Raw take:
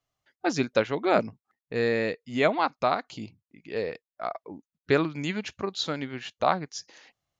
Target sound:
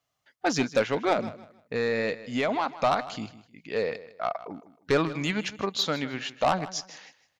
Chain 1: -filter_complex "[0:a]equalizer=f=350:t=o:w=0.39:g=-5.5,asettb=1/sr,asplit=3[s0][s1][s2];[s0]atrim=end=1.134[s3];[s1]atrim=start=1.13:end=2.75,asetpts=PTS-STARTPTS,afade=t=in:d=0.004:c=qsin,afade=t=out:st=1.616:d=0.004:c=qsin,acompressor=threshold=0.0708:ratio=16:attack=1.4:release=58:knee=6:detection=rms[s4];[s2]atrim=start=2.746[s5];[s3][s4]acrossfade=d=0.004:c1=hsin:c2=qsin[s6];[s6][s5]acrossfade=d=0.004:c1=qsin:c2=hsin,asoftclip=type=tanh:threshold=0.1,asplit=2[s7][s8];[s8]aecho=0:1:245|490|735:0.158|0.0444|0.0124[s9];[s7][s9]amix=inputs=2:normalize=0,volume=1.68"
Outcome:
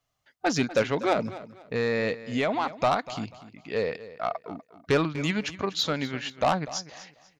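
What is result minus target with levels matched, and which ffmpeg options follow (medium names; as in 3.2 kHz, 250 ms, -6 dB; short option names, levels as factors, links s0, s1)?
echo 89 ms late; 125 Hz band +2.5 dB
-filter_complex "[0:a]highpass=f=140:p=1,equalizer=f=350:t=o:w=0.39:g=-5.5,asettb=1/sr,asplit=3[s0][s1][s2];[s0]atrim=end=1.134[s3];[s1]atrim=start=1.13:end=2.75,asetpts=PTS-STARTPTS,afade=t=in:d=0.004:c=qsin,afade=t=out:st=1.616:d=0.004:c=qsin,acompressor=threshold=0.0708:ratio=16:attack=1.4:release=58:knee=6:detection=rms[s4];[s2]atrim=start=2.746[s5];[s3][s4]acrossfade=d=0.004:c1=hsin:c2=qsin[s6];[s6][s5]acrossfade=d=0.004:c1=qsin:c2=hsin,asoftclip=type=tanh:threshold=0.1,asplit=2[s7][s8];[s8]aecho=0:1:156|312|468:0.158|0.0444|0.0124[s9];[s7][s9]amix=inputs=2:normalize=0,volume=1.68"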